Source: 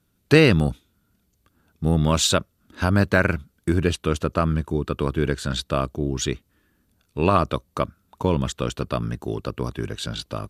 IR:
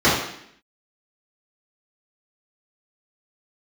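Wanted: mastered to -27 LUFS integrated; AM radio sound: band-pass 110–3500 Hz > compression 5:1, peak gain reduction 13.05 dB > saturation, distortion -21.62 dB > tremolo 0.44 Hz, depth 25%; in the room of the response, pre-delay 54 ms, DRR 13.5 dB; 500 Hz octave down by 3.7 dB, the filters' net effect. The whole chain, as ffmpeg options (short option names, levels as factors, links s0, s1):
-filter_complex "[0:a]equalizer=f=500:t=o:g=-4.5,asplit=2[s0][s1];[1:a]atrim=start_sample=2205,adelay=54[s2];[s1][s2]afir=irnorm=-1:irlink=0,volume=0.015[s3];[s0][s3]amix=inputs=2:normalize=0,highpass=110,lowpass=3500,acompressor=threshold=0.0562:ratio=5,asoftclip=threshold=0.168,tremolo=f=0.44:d=0.25,volume=2.11"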